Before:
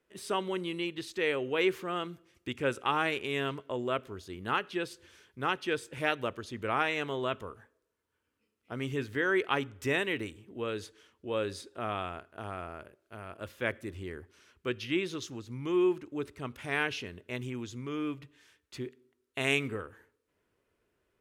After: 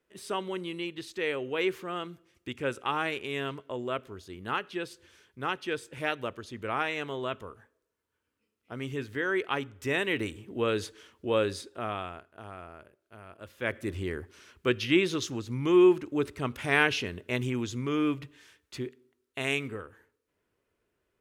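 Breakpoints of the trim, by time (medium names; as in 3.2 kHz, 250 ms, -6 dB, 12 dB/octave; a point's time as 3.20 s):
9.83 s -1 dB
10.37 s +7 dB
11.27 s +7 dB
12.39 s -4.5 dB
13.48 s -4.5 dB
13.89 s +7 dB
18.22 s +7 dB
19.52 s -1.5 dB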